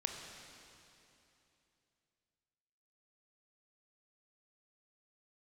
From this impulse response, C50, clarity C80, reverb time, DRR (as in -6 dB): 3.5 dB, 4.5 dB, 2.9 s, 2.5 dB